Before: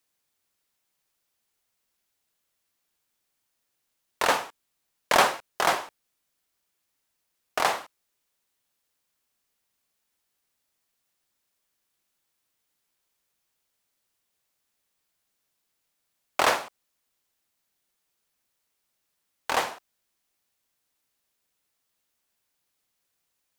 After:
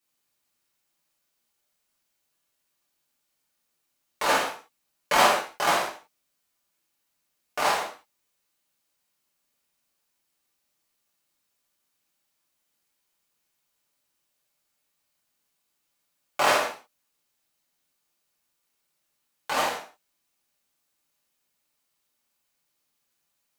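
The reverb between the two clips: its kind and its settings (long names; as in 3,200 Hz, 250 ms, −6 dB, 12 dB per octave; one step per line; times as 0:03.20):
reverb whose tail is shaped and stops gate 200 ms falling, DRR −7 dB
level −6.5 dB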